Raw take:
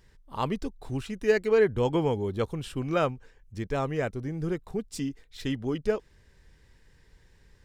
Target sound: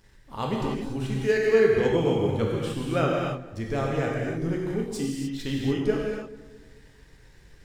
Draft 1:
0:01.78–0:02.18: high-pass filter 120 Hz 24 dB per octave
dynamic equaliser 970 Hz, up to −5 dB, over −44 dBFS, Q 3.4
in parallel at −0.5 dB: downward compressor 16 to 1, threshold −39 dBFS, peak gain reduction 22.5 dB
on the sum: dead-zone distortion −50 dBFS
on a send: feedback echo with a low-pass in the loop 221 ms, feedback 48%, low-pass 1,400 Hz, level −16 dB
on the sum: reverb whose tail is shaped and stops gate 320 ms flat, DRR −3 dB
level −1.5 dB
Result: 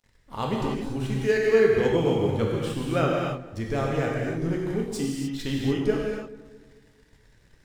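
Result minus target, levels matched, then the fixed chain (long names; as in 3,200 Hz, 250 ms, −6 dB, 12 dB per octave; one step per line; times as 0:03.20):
downward compressor: peak gain reduction −9 dB; dead-zone distortion: distortion +8 dB
0:01.78–0:02.18: high-pass filter 120 Hz 24 dB per octave
dynamic equaliser 970 Hz, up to −5 dB, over −44 dBFS, Q 3.4
in parallel at −0.5 dB: downward compressor 16 to 1, threshold −48.5 dBFS, peak gain reduction 31.5 dB
on the sum: dead-zone distortion −59.5 dBFS
on a send: feedback echo with a low-pass in the loop 221 ms, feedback 48%, low-pass 1,400 Hz, level −16 dB
on the sum: reverb whose tail is shaped and stops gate 320 ms flat, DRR −3 dB
level −1.5 dB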